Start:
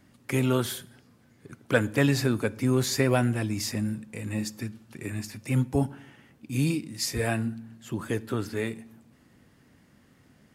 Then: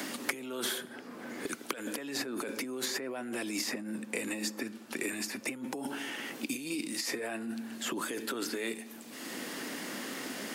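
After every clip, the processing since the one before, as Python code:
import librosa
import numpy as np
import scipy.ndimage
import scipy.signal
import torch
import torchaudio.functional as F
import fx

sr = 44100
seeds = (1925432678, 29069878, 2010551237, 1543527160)

y = fx.over_compress(x, sr, threshold_db=-33.0, ratio=-1.0)
y = scipy.signal.sosfilt(scipy.signal.butter(4, 260.0, 'highpass', fs=sr, output='sos'), y)
y = fx.band_squash(y, sr, depth_pct=100)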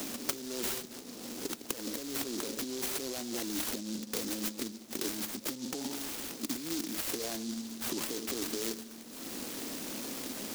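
y = fx.noise_mod_delay(x, sr, seeds[0], noise_hz=5100.0, depth_ms=0.22)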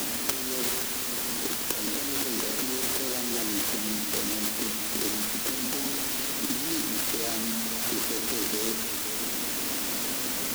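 y = fx.quant_dither(x, sr, seeds[1], bits=6, dither='triangular')
y = y + 10.0 ** (-9.5 / 20.0) * np.pad(y, (int(520 * sr / 1000.0), 0))[:len(y)]
y = F.gain(torch.from_numpy(y), 4.0).numpy()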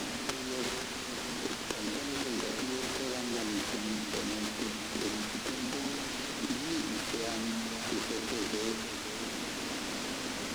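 y = fx.air_absorb(x, sr, metres=87.0)
y = F.gain(torch.from_numpy(y), -2.0).numpy()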